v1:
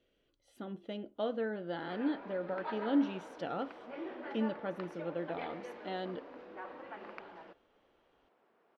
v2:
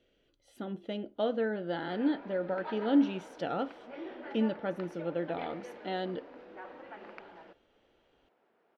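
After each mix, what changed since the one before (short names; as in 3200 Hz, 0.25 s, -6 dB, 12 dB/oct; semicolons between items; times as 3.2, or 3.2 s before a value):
speech +4.5 dB; master: add bell 1100 Hz -5.5 dB 0.22 oct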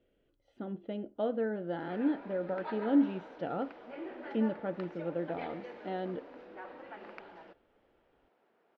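speech: add tape spacing loss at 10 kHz 33 dB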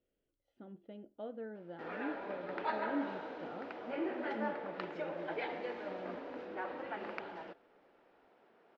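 speech -12.0 dB; background +5.5 dB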